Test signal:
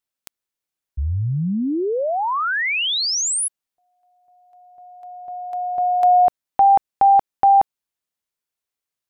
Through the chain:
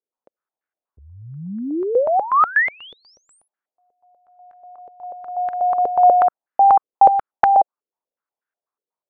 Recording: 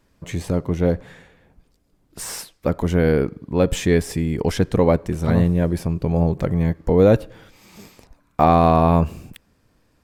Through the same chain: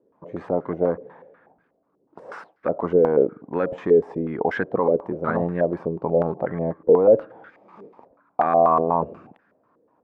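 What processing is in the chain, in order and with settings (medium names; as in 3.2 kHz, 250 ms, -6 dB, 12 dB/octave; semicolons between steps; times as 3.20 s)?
high-pass 260 Hz 12 dB/octave; peak limiter -11.5 dBFS; step-sequenced low-pass 8.2 Hz 460–1600 Hz; trim -1.5 dB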